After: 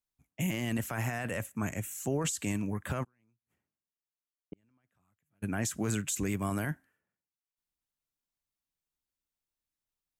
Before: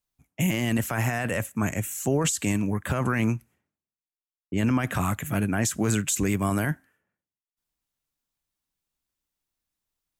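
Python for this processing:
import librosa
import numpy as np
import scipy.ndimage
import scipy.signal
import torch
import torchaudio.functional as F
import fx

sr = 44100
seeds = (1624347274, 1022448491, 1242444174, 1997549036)

y = fx.gate_flip(x, sr, shuts_db=-26.0, range_db=-42, at=(3.03, 5.42), fade=0.02)
y = y * 10.0 ** (-7.5 / 20.0)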